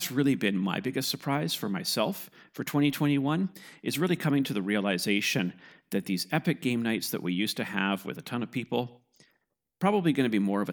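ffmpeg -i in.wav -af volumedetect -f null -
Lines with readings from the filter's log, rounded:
mean_volume: -29.1 dB
max_volume: -9.3 dB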